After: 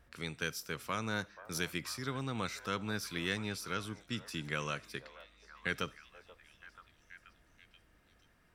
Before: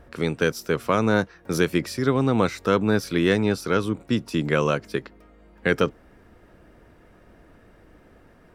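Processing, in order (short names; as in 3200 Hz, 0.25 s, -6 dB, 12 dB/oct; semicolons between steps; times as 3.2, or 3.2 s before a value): passive tone stack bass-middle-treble 5-5-5; delay with a stepping band-pass 0.482 s, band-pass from 710 Hz, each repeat 0.7 oct, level -11.5 dB; on a send at -22 dB: reverb RT60 0.35 s, pre-delay 15 ms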